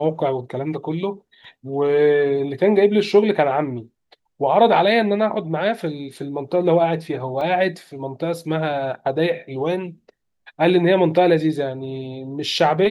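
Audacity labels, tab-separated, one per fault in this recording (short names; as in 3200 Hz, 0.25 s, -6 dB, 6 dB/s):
7.410000	7.410000	gap 3.4 ms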